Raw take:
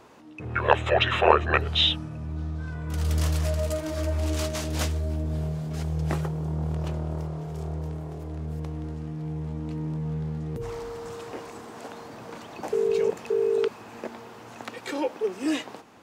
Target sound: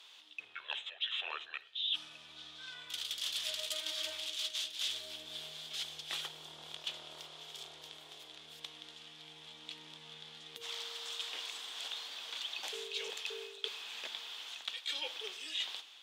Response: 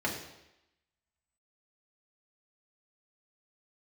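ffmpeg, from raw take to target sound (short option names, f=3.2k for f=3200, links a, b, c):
-filter_complex "[0:a]bandpass=f=3.4k:t=q:w=6.6:csg=0,areverse,acompressor=threshold=-53dB:ratio=16,areverse,aemphasis=mode=production:type=bsi,asplit=2[a][b];[1:a]atrim=start_sample=2205,adelay=51[c];[b][c]afir=irnorm=-1:irlink=0,volume=-25dB[d];[a][d]amix=inputs=2:normalize=0,dynaudnorm=f=140:g=5:m=3.5dB,volume=11.5dB"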